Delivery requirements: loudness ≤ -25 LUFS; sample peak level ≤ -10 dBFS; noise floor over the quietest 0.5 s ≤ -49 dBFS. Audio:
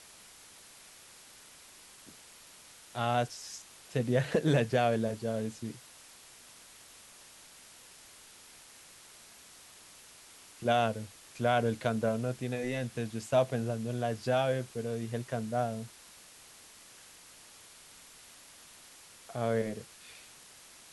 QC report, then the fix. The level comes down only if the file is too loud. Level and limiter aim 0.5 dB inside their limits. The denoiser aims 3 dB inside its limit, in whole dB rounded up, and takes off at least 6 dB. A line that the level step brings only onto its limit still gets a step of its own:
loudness -32.5 LUFS: pass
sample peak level -14.5 dBFS: pass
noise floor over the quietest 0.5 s -55 dBFS: pass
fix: none needed

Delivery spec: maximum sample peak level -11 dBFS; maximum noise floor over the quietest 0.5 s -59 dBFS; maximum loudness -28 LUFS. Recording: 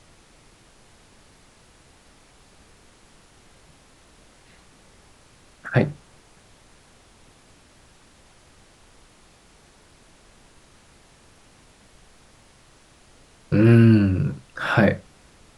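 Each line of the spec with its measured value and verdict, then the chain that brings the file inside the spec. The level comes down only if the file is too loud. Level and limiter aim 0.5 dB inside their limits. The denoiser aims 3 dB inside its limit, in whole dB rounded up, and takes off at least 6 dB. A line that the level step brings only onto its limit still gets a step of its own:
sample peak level -5.0 dBFS: fail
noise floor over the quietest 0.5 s -54 dBFS: fail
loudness -19.5 LUFS: fail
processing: trim -9 dB

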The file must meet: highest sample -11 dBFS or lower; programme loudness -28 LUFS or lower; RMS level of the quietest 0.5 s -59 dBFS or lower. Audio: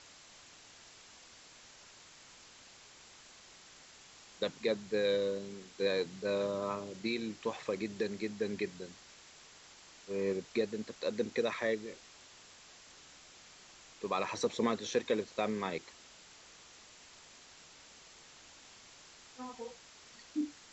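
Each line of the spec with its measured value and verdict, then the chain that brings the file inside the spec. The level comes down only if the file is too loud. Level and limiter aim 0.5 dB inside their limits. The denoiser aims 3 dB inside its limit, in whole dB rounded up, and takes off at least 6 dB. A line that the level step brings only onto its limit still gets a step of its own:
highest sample -19.0 dBFS: pass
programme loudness -36.0 LUFS: pass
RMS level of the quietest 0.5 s -57 dBFS: fail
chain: noise reduction 6 dB, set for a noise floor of -57 dBFS

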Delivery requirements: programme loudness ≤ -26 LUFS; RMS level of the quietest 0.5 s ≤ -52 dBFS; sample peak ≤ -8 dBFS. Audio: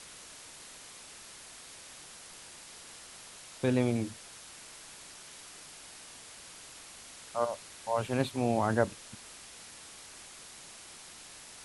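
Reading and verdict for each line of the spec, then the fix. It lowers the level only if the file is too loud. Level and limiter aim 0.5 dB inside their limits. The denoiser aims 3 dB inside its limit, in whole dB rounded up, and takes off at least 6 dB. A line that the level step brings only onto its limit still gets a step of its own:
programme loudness -37.5 LUFS: pass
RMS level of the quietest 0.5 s -50 dBFS: fail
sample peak -12.0 dBFS: pass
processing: noise reduction 6 dB, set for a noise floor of -50 dBFS

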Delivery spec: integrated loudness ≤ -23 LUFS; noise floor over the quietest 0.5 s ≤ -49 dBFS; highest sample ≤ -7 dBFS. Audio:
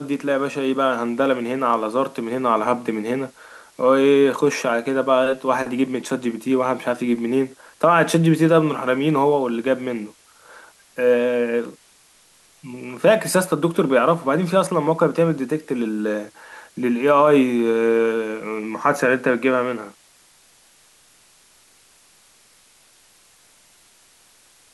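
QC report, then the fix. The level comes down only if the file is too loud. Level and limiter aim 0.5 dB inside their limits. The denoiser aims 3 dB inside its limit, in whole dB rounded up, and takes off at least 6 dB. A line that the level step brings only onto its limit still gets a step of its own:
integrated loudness -19.5 LUFS: fail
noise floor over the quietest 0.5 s -54 dBFS: pass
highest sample -4.5 dBFS: fail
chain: trim -4 dB

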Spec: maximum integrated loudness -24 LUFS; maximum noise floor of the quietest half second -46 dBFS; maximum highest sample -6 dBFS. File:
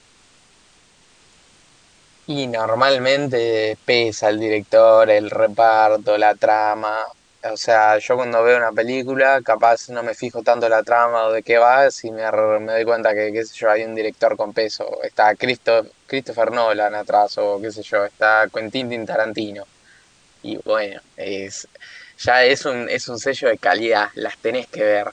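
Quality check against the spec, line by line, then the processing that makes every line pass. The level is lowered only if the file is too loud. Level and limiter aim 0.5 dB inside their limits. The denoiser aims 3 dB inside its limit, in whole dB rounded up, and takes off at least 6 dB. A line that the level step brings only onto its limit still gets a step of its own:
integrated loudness -18.0 LUFS: fail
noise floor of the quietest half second -54 dBFS: pass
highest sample -3.0 dBFS: fail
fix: trim -6.5 dB

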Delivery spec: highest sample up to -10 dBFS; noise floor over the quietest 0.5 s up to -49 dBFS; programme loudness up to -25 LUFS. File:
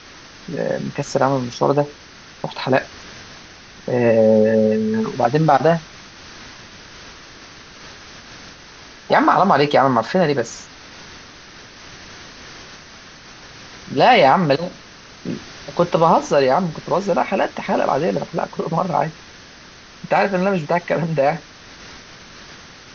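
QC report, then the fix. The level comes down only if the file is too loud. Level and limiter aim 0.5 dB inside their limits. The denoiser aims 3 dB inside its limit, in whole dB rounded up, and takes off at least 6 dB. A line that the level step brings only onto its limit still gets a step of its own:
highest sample -2.0 dBFS: fail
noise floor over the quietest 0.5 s -42 dBFS: fail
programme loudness -18.0 LUFS: fail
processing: trim -7.5 dB; peak limiter -10.5 dBFS

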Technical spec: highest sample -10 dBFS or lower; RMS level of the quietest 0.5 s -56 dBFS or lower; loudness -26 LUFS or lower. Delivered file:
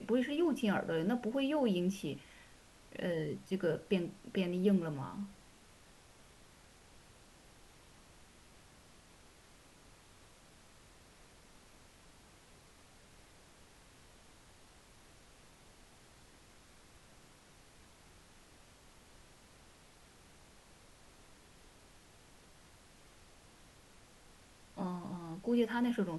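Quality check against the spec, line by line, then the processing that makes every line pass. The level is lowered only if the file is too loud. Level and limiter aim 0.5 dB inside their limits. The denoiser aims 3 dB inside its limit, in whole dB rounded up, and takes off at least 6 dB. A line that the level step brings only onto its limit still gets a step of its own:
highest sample -19.5 dBFS: pass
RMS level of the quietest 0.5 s -61 dBFS: pass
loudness -36.0 LUFS: pass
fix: none needed

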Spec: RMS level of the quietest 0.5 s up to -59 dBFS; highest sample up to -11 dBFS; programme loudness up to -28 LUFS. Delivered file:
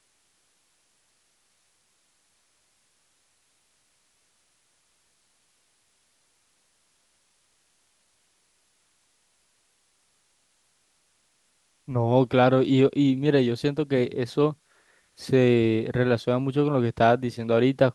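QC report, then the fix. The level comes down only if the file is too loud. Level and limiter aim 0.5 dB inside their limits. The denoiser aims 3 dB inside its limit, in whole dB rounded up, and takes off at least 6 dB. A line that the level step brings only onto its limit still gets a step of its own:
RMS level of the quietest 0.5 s -68 dBFS: pass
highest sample -5.5 dBFS: fail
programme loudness -23.0 LUFS: fail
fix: trim -5.5 dB; peak limiter -11.5 dBFS

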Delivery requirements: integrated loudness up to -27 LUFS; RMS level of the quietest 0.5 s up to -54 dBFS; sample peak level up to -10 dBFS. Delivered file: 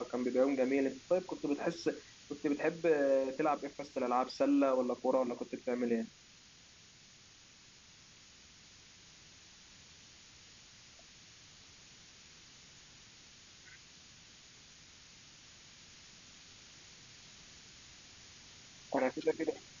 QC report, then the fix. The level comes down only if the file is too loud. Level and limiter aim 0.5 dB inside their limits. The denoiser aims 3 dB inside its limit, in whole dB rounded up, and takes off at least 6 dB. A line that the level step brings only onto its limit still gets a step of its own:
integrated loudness -34.5 LUFS: pass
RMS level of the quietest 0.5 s -60 dBFS: pass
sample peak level -18.5 dBFS: pass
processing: none needed

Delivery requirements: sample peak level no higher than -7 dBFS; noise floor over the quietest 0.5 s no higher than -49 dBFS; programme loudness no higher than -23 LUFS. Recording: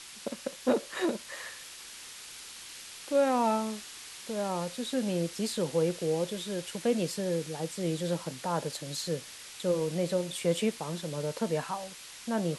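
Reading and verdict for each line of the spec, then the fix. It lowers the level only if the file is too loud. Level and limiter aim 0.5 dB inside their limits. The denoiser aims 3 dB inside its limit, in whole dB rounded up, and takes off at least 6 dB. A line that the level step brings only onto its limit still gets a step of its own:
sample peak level -13.5 dBFS: pass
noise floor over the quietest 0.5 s -46 dBFS: fail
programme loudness -32.0 LUFS: pass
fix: noise reduction 6 dB, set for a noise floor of -46 dBFS

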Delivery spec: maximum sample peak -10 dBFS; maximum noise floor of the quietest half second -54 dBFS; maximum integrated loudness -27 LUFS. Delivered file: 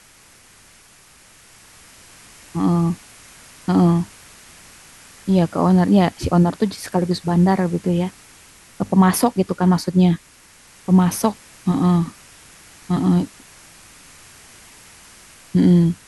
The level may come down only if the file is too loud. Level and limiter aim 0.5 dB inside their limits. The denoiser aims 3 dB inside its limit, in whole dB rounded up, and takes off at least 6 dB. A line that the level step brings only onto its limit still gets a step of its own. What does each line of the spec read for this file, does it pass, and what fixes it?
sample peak -4.5 dBFS: fail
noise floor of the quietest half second -49 dBFS: fail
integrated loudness -18.5 LUFS: fail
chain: trim -9 dB

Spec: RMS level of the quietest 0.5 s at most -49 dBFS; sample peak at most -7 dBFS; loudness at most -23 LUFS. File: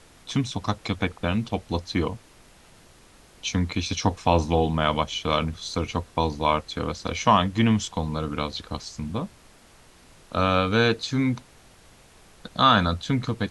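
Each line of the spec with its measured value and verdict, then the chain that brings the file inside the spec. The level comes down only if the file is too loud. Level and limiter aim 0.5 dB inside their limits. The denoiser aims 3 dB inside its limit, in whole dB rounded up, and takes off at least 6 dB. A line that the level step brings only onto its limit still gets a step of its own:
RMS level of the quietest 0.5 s -53 dBFS: pass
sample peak -4.5 dBFS: fail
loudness -25.0 LUFS: pass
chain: peak limiter -7.5 dBFS

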